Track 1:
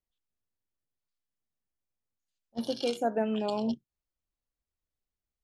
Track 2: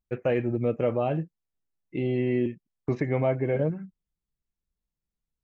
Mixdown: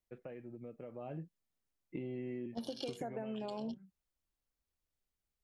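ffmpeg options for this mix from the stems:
-filter_complex "[0:a]acompressor=threshold=-31dB:ratio=3,volume=0.5dB[a];[1:a]highpass=190,bass=f=250:g=7,treble=f=4k:g=-9,acompressor=threshold=-27dB:ratio=6,volume=-6dB,afade=t=in:st=0.91:d=0.61:silence=0.266073,afade=t=out:st=2.88:d=0.53:silence=0.237137[b];[a][b]amix=inputs=2:normalize=0,acompressor=threshold=-38dB:ratio=6"

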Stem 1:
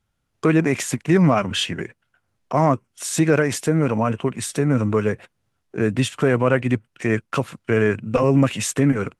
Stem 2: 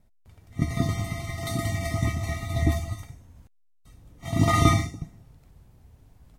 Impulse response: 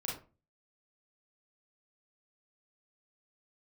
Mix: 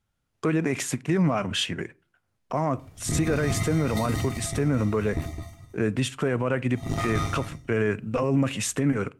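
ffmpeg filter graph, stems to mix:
-filter_complex "[0:a]volume=-4dB,asplit=3[a][b][c];[b]volume=-22dB[d];[1:a]aeval=exprs='0.531*(cos(1*acos(clip(val(0)/0.531,-1,1)))-cos(1*PI/2))+0.106*(cos(4*acos(clip(val(0)/0.531,-1,1)))-cos(4*PI/2))':c=same,adelay=2500,volume=-0.5dB,afade=t=out:st=3.94:d=0.46:silence=0.298538,asplit=3[e][f][g];[f]volume=-4.5dB[h];[g]volume=-6dB[i];[c]apad=whole_len=391734[j];[e][j]sidechaincompress=threshold=-24dB:ratio=8:attack=16:release=190[k];[2:a]atrim=start_sample=2205[l];[d][h]amix=inputs=2:normalize=0[m];[m][l]afir=irnorm=-1:irlink=0[n];[i]aecho=0:1:212:1[o];[a][k][n][o]amix=inputs=4:normalize=0,alimiter=limit=-15dB:level=0:latency=1:release=37"

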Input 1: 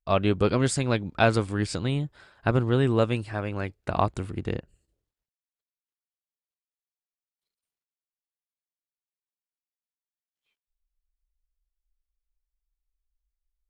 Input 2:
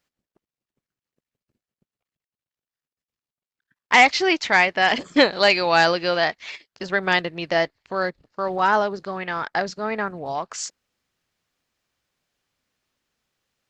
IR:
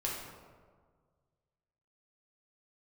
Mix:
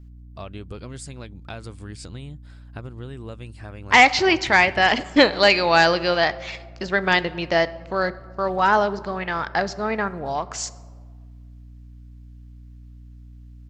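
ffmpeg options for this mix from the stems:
-filter_complex "[0:a]highshelf=f=3.4k:g=7.5,acompressor=threshold=-30dB:ratio=4,adelay=300,volume=-6dB[a];[1:a]aeval=exprs='val(0)+0.00447*(sin(2*PI*60*n/s)+sin(2*PI*2*60*n/s)/2+sin(2*PI*3*60*n/s)/3+sin(2*PI*4*60*n/s)/4+sin(2*PI*5*60*n/s)/5)':c=same,volume=0dB,asplit=2[b][c];[c]volume=-17dB[d];[2:a]atrim=start_sample=2205[e];[d][e]afir=irnorm=-1:irlink=0[f];[a][b][f]amix=inputs=3:normalize=0,lowshelf=f=98:g=7.5"

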